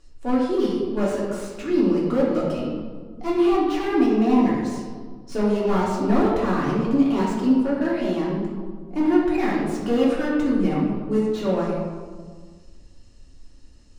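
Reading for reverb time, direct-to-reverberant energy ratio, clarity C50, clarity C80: 1.6 s, -6.5 dB, 0.5 dB, 2.5 dB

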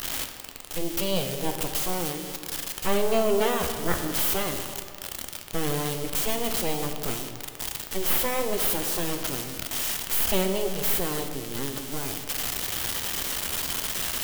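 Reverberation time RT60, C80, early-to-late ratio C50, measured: 2.2 s, 8.0 dB, 6.5 dB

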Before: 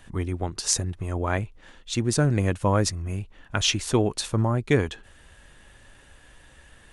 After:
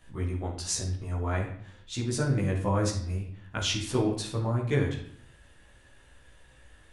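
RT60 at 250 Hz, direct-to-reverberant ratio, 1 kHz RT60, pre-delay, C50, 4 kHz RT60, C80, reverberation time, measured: 0.80 s, -4.5 dB, 0.60 s, 16 ms, 6.0 dB, 0.55 s, 10.0 dB, 0.60 s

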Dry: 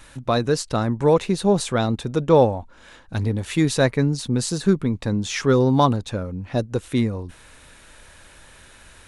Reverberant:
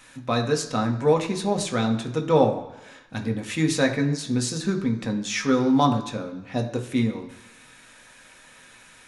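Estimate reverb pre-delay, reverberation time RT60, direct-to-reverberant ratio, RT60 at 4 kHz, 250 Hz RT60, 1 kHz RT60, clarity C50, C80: 3 ms, 1.0 s, 2.5 dB, 1.0 s, 0.95 s, 0.95 s, 10.5 dB, 12.5 dB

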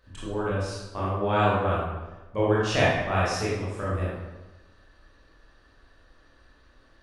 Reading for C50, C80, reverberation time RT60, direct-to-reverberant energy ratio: -2.0 dB, 1.5 dB, 1.1 s, -8.0 dB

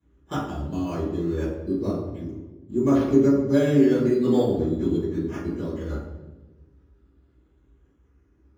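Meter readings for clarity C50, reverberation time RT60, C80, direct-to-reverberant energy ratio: 1.0 dB, 1.2 s, 4.0 dB, -14.5 dB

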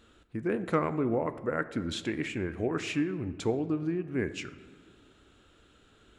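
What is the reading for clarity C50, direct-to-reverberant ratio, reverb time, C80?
14.0 dB, 11.5 dB, 1.6 s, 15.5 dB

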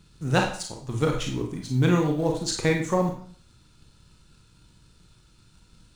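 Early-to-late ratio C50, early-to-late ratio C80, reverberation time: 5.5 dB, 10.0 dB, 0.50 s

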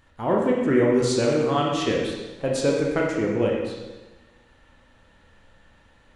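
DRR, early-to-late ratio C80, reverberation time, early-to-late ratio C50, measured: -2.0 dB, 3.5 dB, 1.2 s, 1.0 dB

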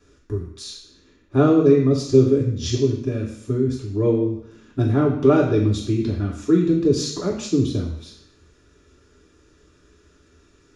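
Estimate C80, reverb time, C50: 10.0 dB, 0.70 s, 7.0 dB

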